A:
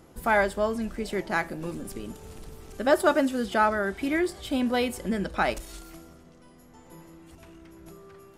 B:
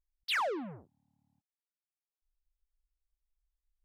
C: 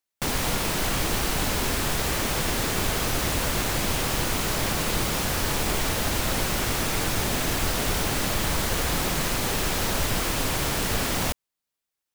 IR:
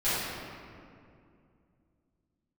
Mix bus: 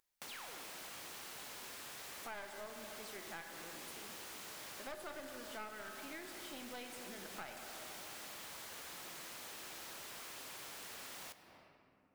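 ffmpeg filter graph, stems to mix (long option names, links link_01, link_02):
-filter_complex "[0:a]adelay=2000,volume=-4.5dB,asplit=2[link_01][link_02];[link_02]volume=-16.5dB[link_03];[1:a]acompressor=mode=upward:threshold=-51dB:ratio=2.5,volume=-10dB,asplit=2[link_04][link_05];[link_05]volume=-12dB[link_06];[2:a]volume=-12dB,asplit=2[link_07][link_08];[link_08]volume=-23.5dB[link_09];[3:a]atrim=start_sample=2205[link_10];[link_03][link_06][link_09]amix=inputs=3:normalize=0[link_11];[link_11][link_10]afir=irnorm=-1:irlink=0[link_12];[link_01][link_04][link_07][link_12]amix=inputs=4:normalize=0,highpass=frequency=840:poles=1,aeval=exprs='clip(val(0),-1,0.0168)':channel_layout=same,acompressor=threshold=-52dB:ratio=2.5"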